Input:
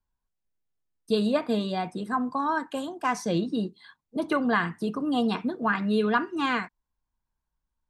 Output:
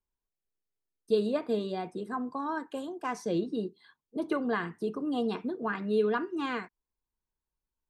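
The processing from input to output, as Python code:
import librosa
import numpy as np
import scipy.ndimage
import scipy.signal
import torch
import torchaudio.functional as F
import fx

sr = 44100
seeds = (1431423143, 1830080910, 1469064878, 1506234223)

y = fx.peak_eq(x, sr, hz=400.0, db=10.0, octaves=0.74)
y = y * 10.0 ** (-8.5 / 20.0)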